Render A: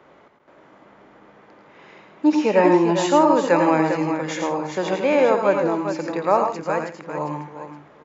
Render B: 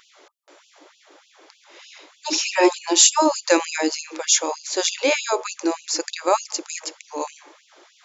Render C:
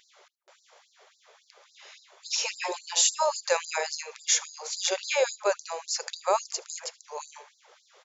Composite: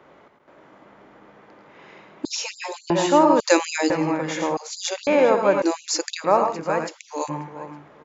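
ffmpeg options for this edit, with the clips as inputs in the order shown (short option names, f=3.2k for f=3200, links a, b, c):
-filter_complex "[2:a]asplit=2[a][b];[1:a]asplit=3[c][d][e];[0:a]asplit=6[f][g][h][i][j][k];[f]atrim=end=2.252[l];[a]atrim=start=2.248:end=2.902[m];[g]atrim=start=2.898:end=3.402[n];[c]atrim=start=3.398:end=3.902[o];[h]atrim=start=3.898:end=4.572[p];[b]atrim=start=4.568:end=5.072[q];[i]atrim=start=5.068:end=5.622[r];[d]atrim=start=5.618:end=6.242[s];[j]atrim=start=6.238:end=6.89[t];[e]atrim=start=6.87:end=7.3[u];[k]atrim=start=7.28[v];[l][m]acrossfade=d=0.004:c1=hsin:c2=hsin[w];[w][n]acrossfade=d=0.004:c1=hsin:c2=hsin[x];[x][o]acrossfade=d=0.004:c1=hsin:c2=hsin[y];[y][p]acrossfade=d=0.004:c1=hsin:c2=hsin[z];[z][q]acrossfade=d=0.004:c1=hsin:c2=hsin[aa];[aa][r]acrossfade=d=0.004:c1=hsin:c2=hsin[ab];[ab][s]acrossfade=d=0.004:c1=hsin:c2=hsin[ac];[ac][t]acrossfade=d=0.004:c1=hsin:c2=hsin[ad];[ad][u]acrossfade=d=0.02:c1=tri:c2=tri[ae];[ae][v]acrossfade=d=0.02:c1=tri:c2=tri"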